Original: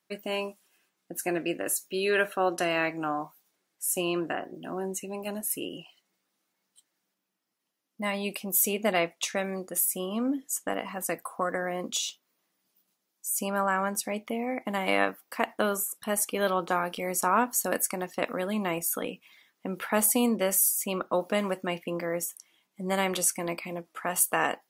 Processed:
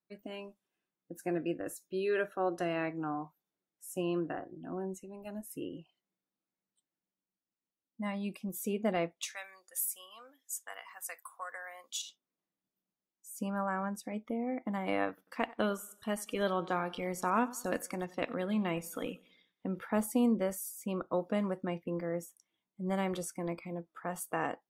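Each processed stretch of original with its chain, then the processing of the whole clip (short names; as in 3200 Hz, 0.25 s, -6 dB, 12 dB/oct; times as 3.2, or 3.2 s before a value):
9.21–12.02 HPF 1000 Hz + tilt +3 dB/oct + notch 1300 Hz, Q 20
15.08–19.79 bell 3400 Hz +8 dB 1.7 oct + feedback echo 94 ms, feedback 48%, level -19 dB
whole clip: spectral noise reduction 8 dB; tilt -3 dB/oct; gain -8 dB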